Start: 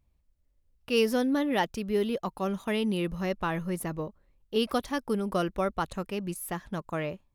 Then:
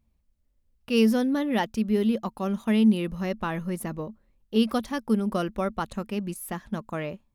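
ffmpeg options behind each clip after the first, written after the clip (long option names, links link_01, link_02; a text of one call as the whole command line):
ffmpeg -i in.wav -af "equalizer=frequency=220:width_type=o:width=0.21:gain=12" out.wav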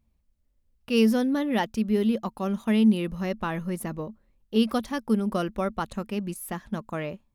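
ffmpeg -i in.wav -af anull out.wav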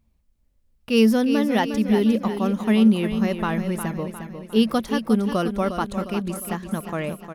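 ffmpeg -i in.wav -af "aecho=1:1:356|712|1068|1424|1780|2136:0.355|0.174|0.0852|0.0417|0.0205|0.01,volume=4dB" out.wav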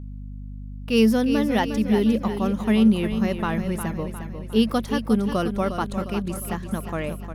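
ffmpeg -i in.wav -af "aeval=exprs='val(0)+0.0224*(sin(2*PI*50*n/s)+sin(2*PI*2*50*n/s)/2+sin(2*PI*3*50*n/s)/3+sin(2*PI*4*50*n/s)/4+sin(2*PI*5*50*n/s)/5)':channel_layout=same,volume=-1dB" out.wav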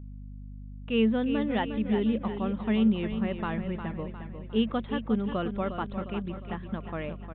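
ffmpeg -i in.wav -af "aresample=8000,aresample=44100,volume=-6.5dB" out.wav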